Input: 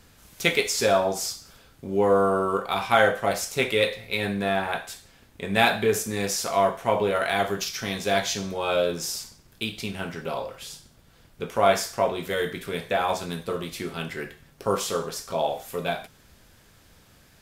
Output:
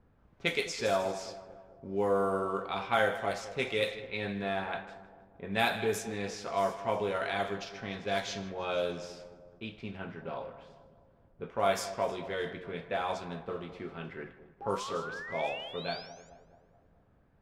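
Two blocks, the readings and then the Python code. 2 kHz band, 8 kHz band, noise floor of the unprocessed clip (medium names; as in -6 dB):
-8.0 dB, -14.5 dB, -56 dBFS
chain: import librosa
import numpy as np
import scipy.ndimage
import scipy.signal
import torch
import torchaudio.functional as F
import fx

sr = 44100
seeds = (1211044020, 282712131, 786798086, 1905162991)

y = fx.spec_paint(x, sr, seeds[0], shape='rise', start_s=14.61, length_s=1.69, low_hz=780.0, high_hz=7300.0, level_db=-33.0)
y = fx.echo_split(y, sr, split_hz=1000.0, low_ms=215, high_ms=156, feedback_pct=52, wet_db=-13.5)
y = fx.env_lowpass(y, sr, base_hz=990.0, full_db=-17.0)
y = y * 10.0 ** (-8.5 / 20.0)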